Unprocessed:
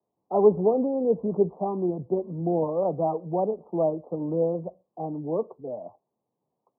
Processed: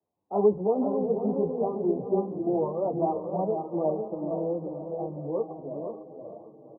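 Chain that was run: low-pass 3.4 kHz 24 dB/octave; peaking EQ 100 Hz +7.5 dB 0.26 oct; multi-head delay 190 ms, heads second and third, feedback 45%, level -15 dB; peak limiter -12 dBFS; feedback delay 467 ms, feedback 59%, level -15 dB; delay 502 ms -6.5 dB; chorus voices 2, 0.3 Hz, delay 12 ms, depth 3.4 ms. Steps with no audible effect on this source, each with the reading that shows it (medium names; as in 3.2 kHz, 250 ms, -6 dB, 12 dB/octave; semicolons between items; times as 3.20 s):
low-pass 3.4 kHz: input has nothing above 1.1 kHz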